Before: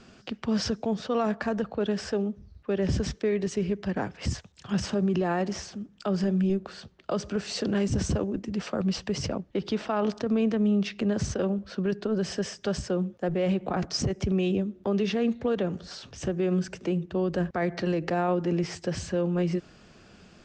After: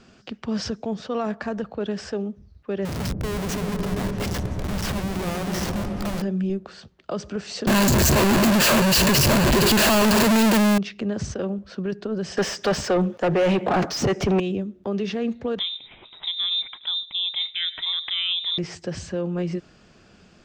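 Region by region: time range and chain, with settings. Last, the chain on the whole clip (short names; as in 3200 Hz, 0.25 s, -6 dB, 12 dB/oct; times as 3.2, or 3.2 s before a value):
2.85–6.22 Schmitt trigger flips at -40.5 dBFS + repeats that get brighter 0.127 s, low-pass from 200 Hz, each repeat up 1 oct, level 0 dB
7.67–10.78 infinite clipping + ripple EQ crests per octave 1.4, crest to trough 11 dB + sample leveller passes 5
12.37–14.4 high shelf 3400 Hz +10.5 dB + overdrive pedal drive 27 dB, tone 1200 Hz, clips at -10.5 dBFS
15.59–18.58 inverted band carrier 3800 Hz + echo 0.104 s -23 dB
whole clip: dry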